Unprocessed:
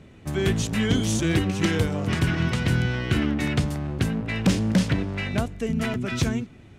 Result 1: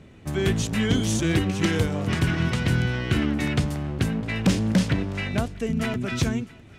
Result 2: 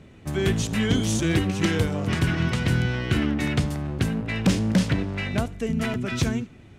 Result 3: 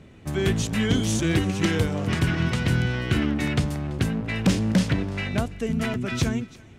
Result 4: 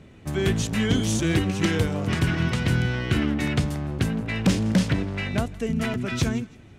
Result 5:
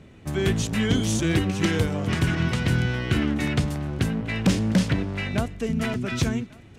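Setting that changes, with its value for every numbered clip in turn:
thinning echo, time: 656 ms, 73 ms, 335 ms, 164 ms, 1146 ms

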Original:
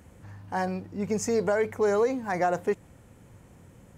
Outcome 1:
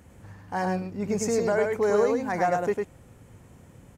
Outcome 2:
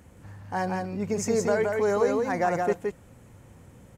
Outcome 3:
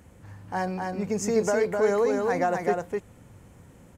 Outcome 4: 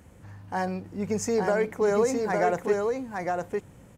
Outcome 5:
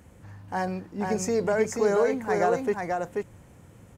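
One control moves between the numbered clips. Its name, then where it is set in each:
delay, time: 103 ms, 171 ms, 255 ms, 859 ms, 485 ms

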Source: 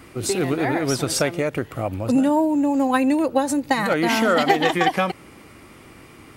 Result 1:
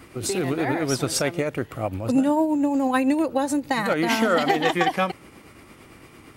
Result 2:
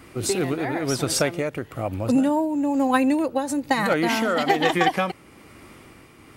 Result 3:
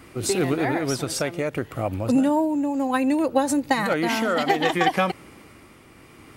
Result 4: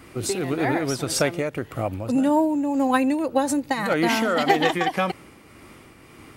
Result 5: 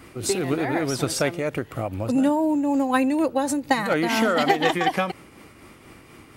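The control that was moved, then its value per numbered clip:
tremolo, rate: 8.8 Hz, 1.1 Hz, 0.64 Hz, 1.8 Hz, 4.1 Hz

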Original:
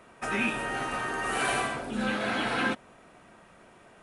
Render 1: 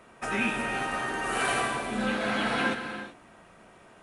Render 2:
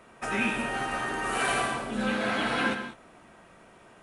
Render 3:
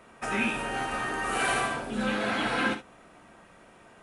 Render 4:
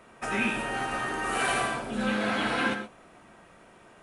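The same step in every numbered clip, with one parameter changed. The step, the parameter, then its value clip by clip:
gated-style reverb, gate: 410 ms, 220 ms, 90 ms, 150 ms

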